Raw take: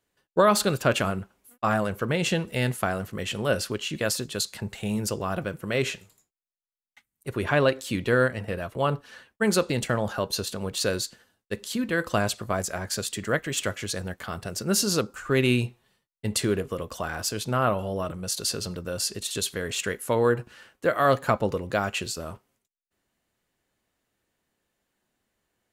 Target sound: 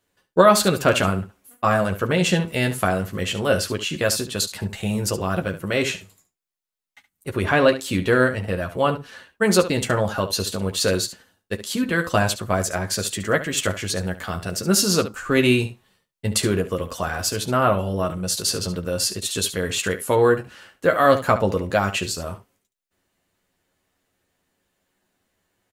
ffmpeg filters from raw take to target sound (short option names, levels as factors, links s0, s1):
-af "aecho=1:1:11|71:0.531|0.237,volume=1.58"